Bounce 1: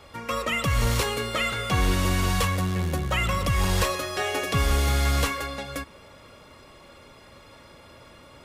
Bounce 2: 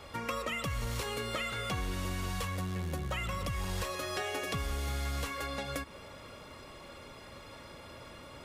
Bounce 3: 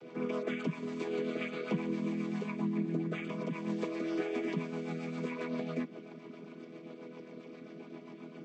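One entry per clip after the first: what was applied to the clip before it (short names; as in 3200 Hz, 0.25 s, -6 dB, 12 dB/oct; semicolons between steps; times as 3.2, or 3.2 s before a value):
compressor 6:1, threshold -33 dBFS, peak gain reduction 14 dB
chord vocoder major triad, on E3; small resonant body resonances 340/2300 Hz, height 13 dB, ringing for 25 ms; rotary speaker horn 7.5 Hz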